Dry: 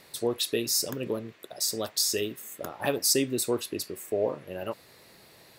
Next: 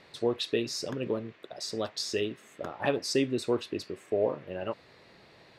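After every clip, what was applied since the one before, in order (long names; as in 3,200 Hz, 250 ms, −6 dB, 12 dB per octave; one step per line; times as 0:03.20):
low-pass filter 3,700 Hz 12 dB per octave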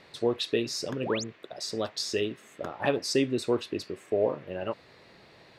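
sound drawn into the spectrogram rise, 0:01.02–0:01.24, 330–7,700 Hz −37 dBFS
level +1.5 dB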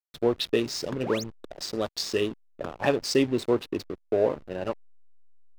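slack as between gear wheels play −33.5 dBFS
level +3 dB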